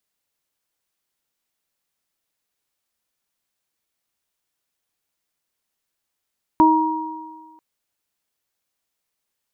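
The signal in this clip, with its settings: additive tone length 0.99 s, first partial 316 Hz, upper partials -16/1.5 dB, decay 1.45 s, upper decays 0.49/1.57 s, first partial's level -12 dB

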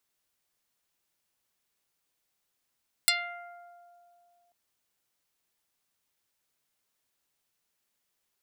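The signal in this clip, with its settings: plucked string F5, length 1.44 s, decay 2.80 s, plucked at 0.11, dark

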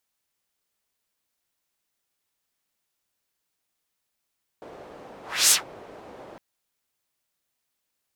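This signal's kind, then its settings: whoosh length 1.76 s, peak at 0.89 s, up 0.30 s, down 0.14 s, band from 560 Hz, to 8 kHz, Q 1.4, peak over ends 28.5 dB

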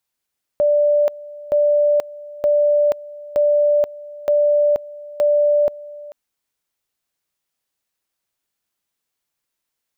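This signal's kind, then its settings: two-level tone 588 Hz -12 dBFS, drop 20 dB, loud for 0.48 s, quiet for 0.44 s, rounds 6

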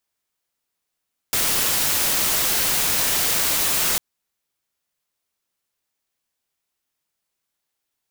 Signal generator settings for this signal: noise white, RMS -20.5 dBFS 2.65 s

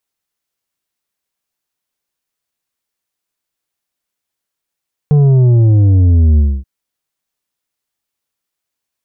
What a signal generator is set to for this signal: sub drop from 150 Hz, over 1.53 s, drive 7 dB, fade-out 0.26 s, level -6.5 dB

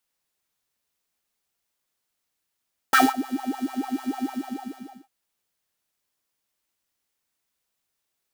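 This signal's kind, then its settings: synth patch with filter wobble C4, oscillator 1 square, interval +19 st, sub -11.5 dB, noise -8.5 dB, filter highpass, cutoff 390 Hz, Q 7.1, filter envelope 1 oct, attack 2.9 ms, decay 0.20 s, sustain -23 dB, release 0.83 s, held 1.32 s, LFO 6.7 Hz, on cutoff 1.1 oct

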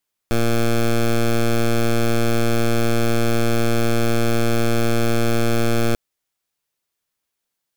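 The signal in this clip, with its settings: pulse 116 Hz, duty 12% -16.5 dBFS 5.64 s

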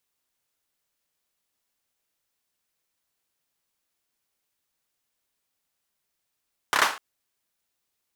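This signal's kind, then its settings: hand clap length 0.25 s, apart 29 ms, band 1.2 kHz, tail 0.36 s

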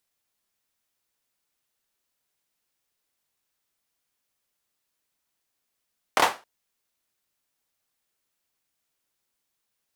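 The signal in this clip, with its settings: hand clap length 0.27 s, bursts 3, apart 26 ms, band 830 Hz, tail 0.28 s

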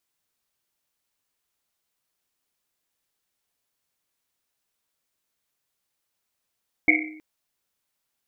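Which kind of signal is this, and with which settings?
Risset drum length 0.32 s, pitch 310 Hz, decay 0.83 s, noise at 2.2 kHz, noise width 220 Hz, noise 65%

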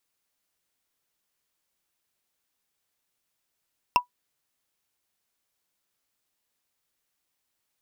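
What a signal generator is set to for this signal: wood hit, lowest mode 982 Hz, decay 0.11 s, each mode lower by 4.5 dB, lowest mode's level -11 dB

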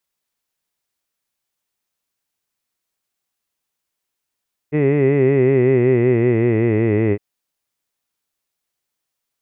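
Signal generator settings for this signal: formant-synthesis vowel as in hid, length 2.46 s, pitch 145 Hz, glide -5.5 st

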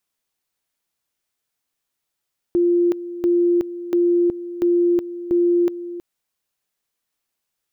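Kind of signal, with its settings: two-level tone 348 Hz -13.5 dBFS, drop 14 dB, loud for 0.37 s, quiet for 0.32 s, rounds 5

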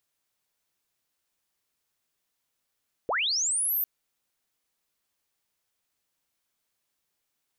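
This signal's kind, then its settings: sweep linear 380 Hz -> 14 kHz -24 dBFS -> -24 dBFS 0.75 s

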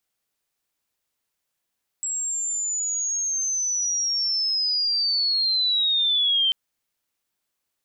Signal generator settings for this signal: sweep linear 7.7 kHz -> 3.1 kHz -24.5 dBFS -> -17.5 dBFS 4.49 s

